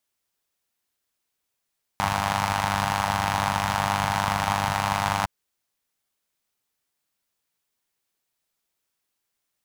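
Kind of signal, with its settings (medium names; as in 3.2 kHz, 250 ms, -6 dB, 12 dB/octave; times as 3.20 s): four-cylinder engine model, steady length 3.26 s, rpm 3000, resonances 86/140/850 Hz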